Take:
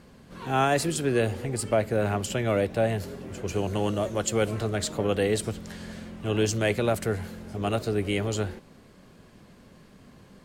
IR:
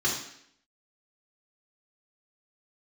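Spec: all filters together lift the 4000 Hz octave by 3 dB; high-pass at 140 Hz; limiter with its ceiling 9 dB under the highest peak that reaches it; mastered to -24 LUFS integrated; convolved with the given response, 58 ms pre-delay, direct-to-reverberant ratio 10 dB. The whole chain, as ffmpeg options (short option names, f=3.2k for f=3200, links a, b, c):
-filter_complex "[0:a]highpass=140,equalizer=f=4k:t=o:g=4,alimiter=limit=-20.5dB:level=0:latency=1,asplit=2[a][b];[1:a]atrim=start_sample=2205,adelay=58[c];[b][c]afir=irnorm=-1:irlink=0,volume=-20.5dB[d];[a][d]amix=inputs=2:normalize=0,volume=7dB"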